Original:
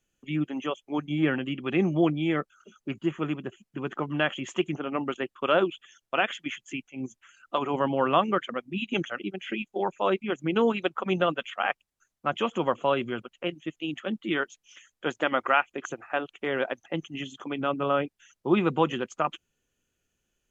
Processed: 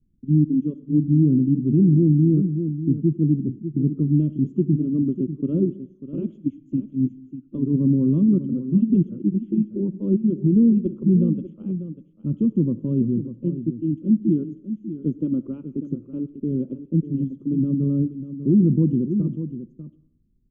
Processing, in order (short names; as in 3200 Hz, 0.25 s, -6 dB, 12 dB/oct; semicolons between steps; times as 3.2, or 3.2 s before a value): inverse Chebyshev low-pass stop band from 680 Hz, stop band 50 dB; on a send: echo 0.594 s -11.5 dB; on the sum: digital reverb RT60 0.7 s, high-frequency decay 0.9×, pre-delay 25 ms, DRR 17 dB; maximiser +25 dB; gain -8.5 dB